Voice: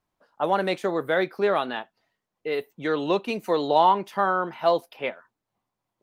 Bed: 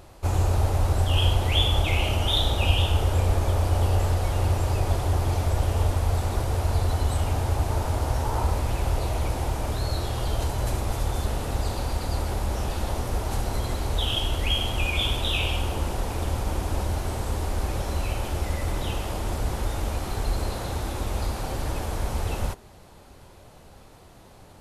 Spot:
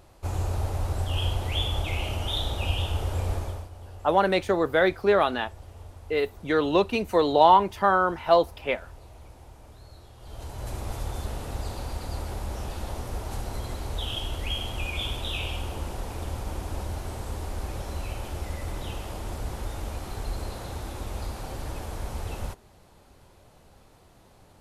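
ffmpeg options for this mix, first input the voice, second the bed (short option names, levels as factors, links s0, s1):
-filter_complex "[0:a]adelay=3650,volume=1.26[s0];[1:a]volume=2.99,afade=t=out:st=3.34:d=0.35:silence=0.16788,afade=t=in:st=10.19:d=0.68:silence=0.16788[s1];[s0][s1]amix=inputs=2:normalize=0"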